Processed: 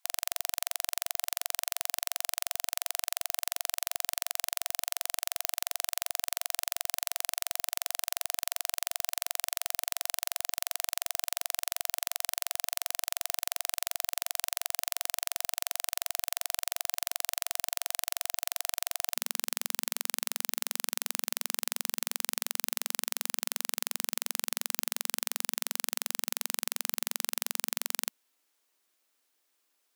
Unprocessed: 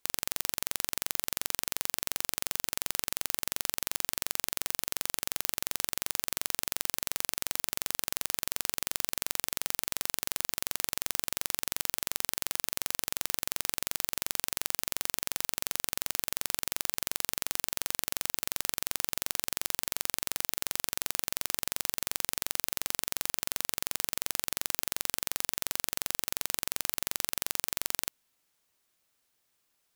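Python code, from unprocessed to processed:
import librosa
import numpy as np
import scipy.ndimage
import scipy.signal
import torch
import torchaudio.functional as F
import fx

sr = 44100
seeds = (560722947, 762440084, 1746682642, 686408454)

y = fx.brickwall_highpass(x, sr, low_hz=fx.steps((0.0, 700.0), (19.14, 220.0)))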